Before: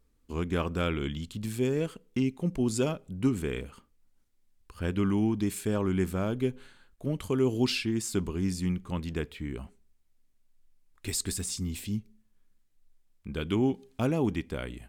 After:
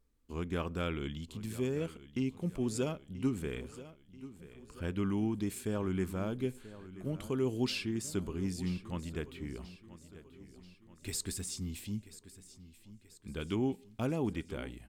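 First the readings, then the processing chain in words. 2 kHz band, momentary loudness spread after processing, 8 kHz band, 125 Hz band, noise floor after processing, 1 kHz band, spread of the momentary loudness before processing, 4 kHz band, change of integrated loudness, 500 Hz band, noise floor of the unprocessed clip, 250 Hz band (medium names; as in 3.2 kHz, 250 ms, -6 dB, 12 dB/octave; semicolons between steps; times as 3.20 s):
-6.0 dB, 20 LU, -6.0 dB, -6.0 dB, -62 dBFS, -6.0 dB, 10 LU, -6.0 dB, -6.0 dB, -6.0 dB, -68 dBFS, -6.0 dB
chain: feedback delay 984 ms, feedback 51%, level -16 dB; trim -6 dB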